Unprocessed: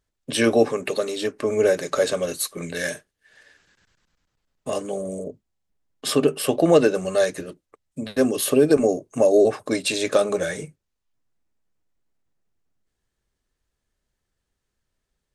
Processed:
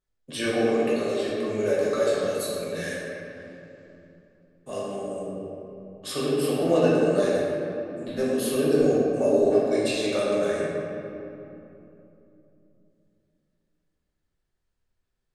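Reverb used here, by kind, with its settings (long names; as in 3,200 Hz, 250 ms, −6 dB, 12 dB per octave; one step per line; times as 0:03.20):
rectangular room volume 130 cubic metres, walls hard, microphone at 1 metre
level −12 dB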